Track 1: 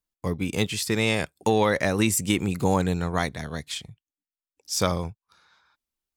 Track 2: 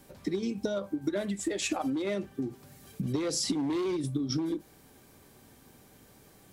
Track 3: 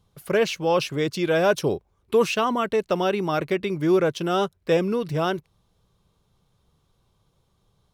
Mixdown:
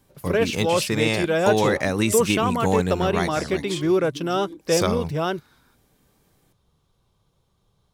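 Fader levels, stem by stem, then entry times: +0.5, −7.5, −0.5 decibels; 0.00, 0.00, 0.00 seconds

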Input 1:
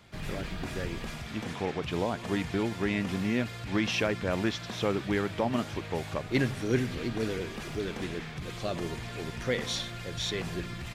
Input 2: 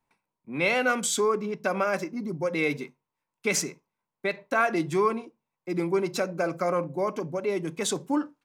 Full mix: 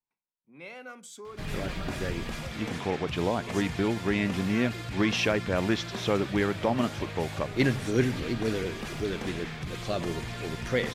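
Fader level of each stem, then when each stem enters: +2.5, −19.5 decibels; 1.25, 0.00 seconds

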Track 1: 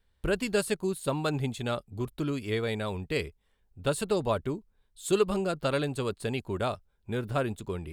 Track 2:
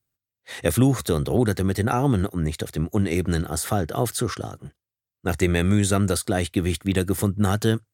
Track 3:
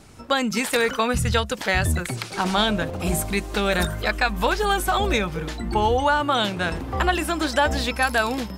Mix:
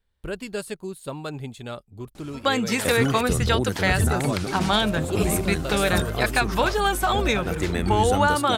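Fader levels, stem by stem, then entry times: −3.5, −5.5, −0.5 decibels; 0.00, 2.20, 2.15 seconds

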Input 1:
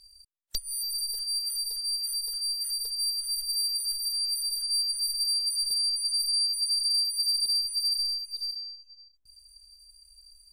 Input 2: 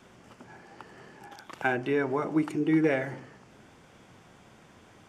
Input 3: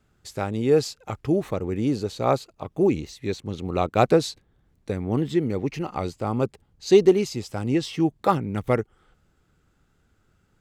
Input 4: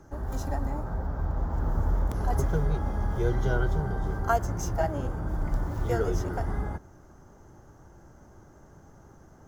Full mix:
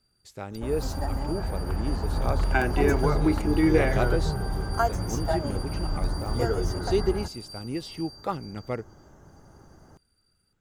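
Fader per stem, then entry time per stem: −18.0, +2.0, −9.5, +0.5 decibels; 0.00, 0.90, 0.00, 0.50 seconds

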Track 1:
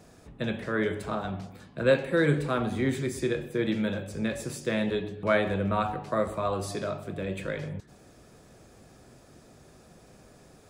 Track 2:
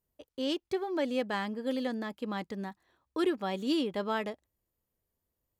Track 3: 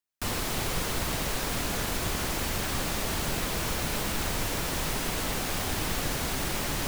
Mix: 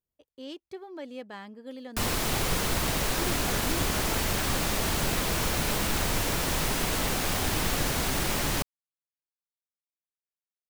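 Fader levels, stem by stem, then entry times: muted, −9.0 dB, +2.5 dB; muted, 0.00 s, 1.75 s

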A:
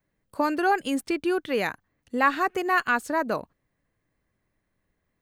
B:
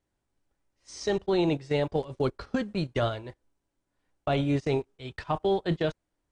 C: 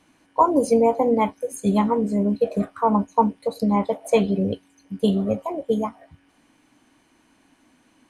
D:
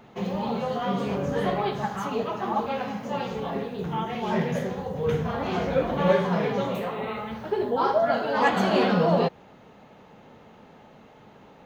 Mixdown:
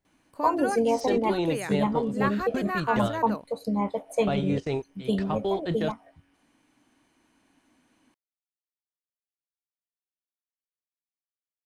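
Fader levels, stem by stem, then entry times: −8.0 dB, −2.0 dB, −6.5 dB, muted; 0.00 s, 0.00 s, 0.05 s, muted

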